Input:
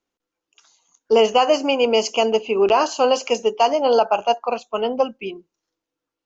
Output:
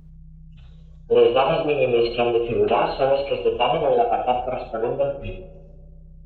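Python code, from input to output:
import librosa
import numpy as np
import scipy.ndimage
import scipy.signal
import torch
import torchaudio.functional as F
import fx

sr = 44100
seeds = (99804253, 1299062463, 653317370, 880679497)

p1 = fx.add_hum(x, sr, base_hz=60, snr_db=22)
p2 = fx.pitch_keep_formants(p1, sr, semitones=-11.0)
p3 = p2 + fx.echo_tape(p2, sr, ms=137, feedback_pct=65, wet_db=-14, lp_hz=1200.0, drive_db=4.0, wow_cents=18, dry=0)
p4 = fx.rev_gated(p3, sr, seeds[0], gate_ms=110, shape='flat', drr_db=4.0)
y = F.gain(torch.from_numpy(p4), -3.0).numpy()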